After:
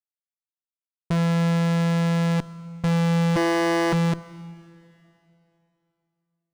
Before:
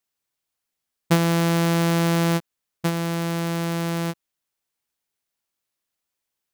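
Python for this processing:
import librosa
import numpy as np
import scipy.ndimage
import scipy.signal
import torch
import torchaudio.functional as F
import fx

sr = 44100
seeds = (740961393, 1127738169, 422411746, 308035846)

y = fx.ellip_highpass(x, sr, hz=360.0, order=4, stop_db=40, at=(3.35, 3.92), fade=0.02)
y = fx.over_compress(y, sr, threshold_db=-27.0, ratio=-1.0)
y = fx.fuzz(y, sr, gain_db=45.0, gate_db=-48.0)
y = fx.rev_plate(y, sr, seeds[0], rt60_s=2.9, hf_ratio=0.95, predelay_ms=0, drr_db=17.5)
y = np.interp(np.arange(len(y)), np.arange(len(y))[::3], y[::3])
y = F.gain(torch.from_numpy(y), -6.5).numpy()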